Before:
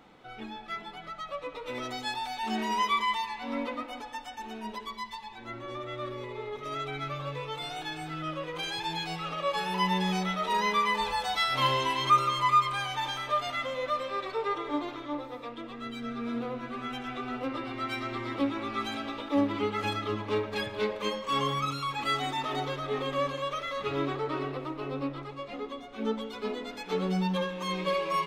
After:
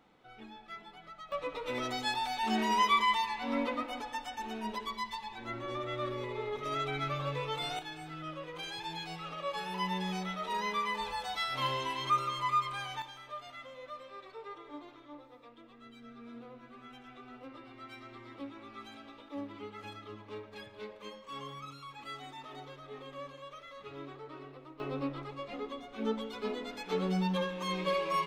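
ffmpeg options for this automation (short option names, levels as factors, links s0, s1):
-af "asetnsamples=n=441:p=0,asendcmd='1.32 volume volume 0.5dB;7.79 volume volume -7dB;13.02 volume volume -15dB;24.8 volume volume -2.5dB',volume=0.355"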